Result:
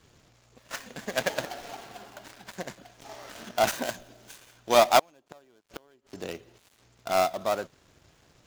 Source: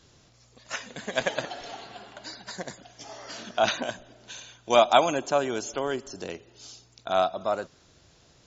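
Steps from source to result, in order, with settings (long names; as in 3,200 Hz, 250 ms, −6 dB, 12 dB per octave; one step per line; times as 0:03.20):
gap after every zero crossing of 0.13 ms
0:03.67–0:04.37: high-shelf EQ 5,100 Hz +7 dB
0:04.99–0:06.18: gate with flip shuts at −24 dBFS, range −31 dB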